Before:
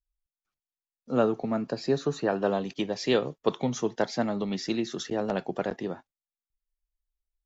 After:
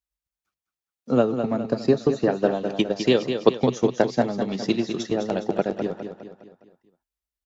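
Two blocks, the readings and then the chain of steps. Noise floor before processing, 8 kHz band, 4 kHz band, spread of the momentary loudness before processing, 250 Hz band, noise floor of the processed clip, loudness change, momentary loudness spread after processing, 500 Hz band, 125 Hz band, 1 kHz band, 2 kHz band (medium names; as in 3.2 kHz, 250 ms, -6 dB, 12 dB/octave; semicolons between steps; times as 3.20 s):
under -85 dBFS, no reading, +4.0 dB, 6 LU, +6.0 dB, under -85 dBFS, +5.5 dB, 6 LU, +6.0 dB, +5.5 dB, +4.0 dB, +3.0 dB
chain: high-pass 56 Hz 24 dB/octave; dynamic bell 1.4 kHz, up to -4 dB, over -39 dBFS, Q 1; transient shaper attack +8 dB, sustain -4 dB; on a send: feedback delay 205 ms, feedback 47%, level -8 dB; on the sum: trim +1.5 dB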